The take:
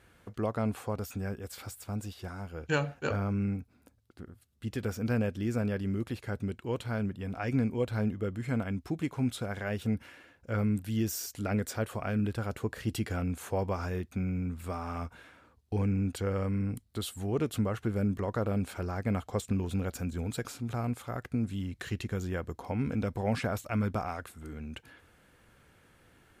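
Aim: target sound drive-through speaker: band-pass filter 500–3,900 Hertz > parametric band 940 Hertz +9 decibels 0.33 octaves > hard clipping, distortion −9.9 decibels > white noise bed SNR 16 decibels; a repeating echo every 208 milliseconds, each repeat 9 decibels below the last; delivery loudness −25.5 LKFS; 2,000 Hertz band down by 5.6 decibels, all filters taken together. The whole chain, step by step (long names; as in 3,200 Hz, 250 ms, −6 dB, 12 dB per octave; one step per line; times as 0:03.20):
band-pass filter 500–3,900 Hz
parametric band 940 Hz +9 dB 0.33 octaves
parametric band 2,000 Hz −8.5 dB
repeating echo 208 ms, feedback 35%, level −9 dB
hard clipping −32.5 dBFS
white noise bed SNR 16 dB
level +16.5 dB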